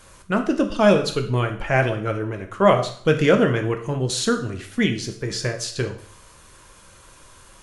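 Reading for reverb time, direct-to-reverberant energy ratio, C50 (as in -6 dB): 0.55 s, 4.5 dB, 10.0 dB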